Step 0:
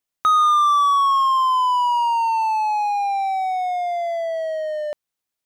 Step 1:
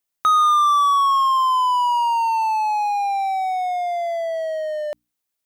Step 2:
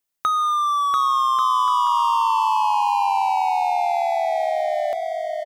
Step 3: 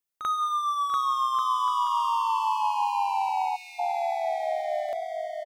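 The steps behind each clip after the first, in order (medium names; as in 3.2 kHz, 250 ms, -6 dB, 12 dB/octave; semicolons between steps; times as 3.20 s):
treble shelf 8.6 kHz +6 dB; hum notches 60/120/180/240/300 Hz
compression, threshold -18 dBFS, peak gain reduction 5.5 dB; on a send: bouncing-ball echo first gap 690 ms, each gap 0.65×, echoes 5
reverse echo 41 ms -10.5 dB; time-frequency box 3.56–3.79 s, 280–1700 Hz -28 dB; trim -7 dB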